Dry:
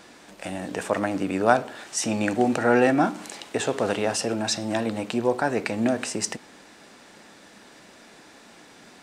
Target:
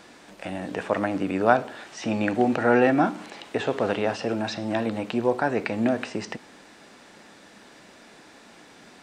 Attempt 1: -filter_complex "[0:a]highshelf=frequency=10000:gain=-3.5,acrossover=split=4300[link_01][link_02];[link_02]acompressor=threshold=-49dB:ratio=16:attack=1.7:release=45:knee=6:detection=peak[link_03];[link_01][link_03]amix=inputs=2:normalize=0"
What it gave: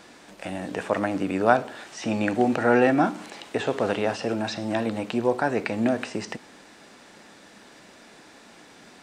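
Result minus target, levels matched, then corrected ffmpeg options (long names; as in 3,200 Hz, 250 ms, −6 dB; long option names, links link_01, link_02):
downward compressor: peak gain reduction −6 dB
-filter_complex "[0:a]highshelf=frequency=10000:gain=-3.5,acrossover=split=4300[link_01][link_02];[link_02]acompressor=threshold=-55.5dB:ratio=16:attack=1.7:release=45:knee=6:detection=peak[link_03];[link_01][link_03]amix=inputs=2:normalize=0"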